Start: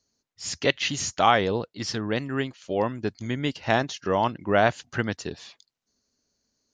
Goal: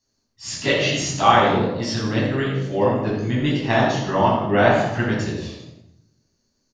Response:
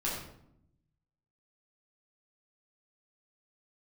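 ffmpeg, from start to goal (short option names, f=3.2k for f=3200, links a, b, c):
-filter_complex "[0:a]asplit=6[a][b][c][d][e][f];[b]adelay=84,afreqshift=53,volume=-10.5dB[g];[c]adelay=168,afreqshift=106,volume=-17.6dB[h];[d]adelay=252,afreqshift=159,volume=-24.8dB[i];[e]adelay=336,afreqshift=212,volume=-31.9dB[j];[f]adelay=420,afreqshift=265,volume=-39dB[k];[a][g][h][i][j][k]amix=inputs=6:normalize=0[l];[1:a]atrim=start_sample=2205[m];[l][m]afir=irnorm=-1:irlink=0,volume=-1dB"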